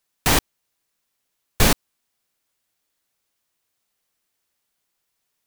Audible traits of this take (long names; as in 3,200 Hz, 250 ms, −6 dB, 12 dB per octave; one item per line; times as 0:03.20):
background noise floor −76 dBFS
spectral slope −3.0 dB per octave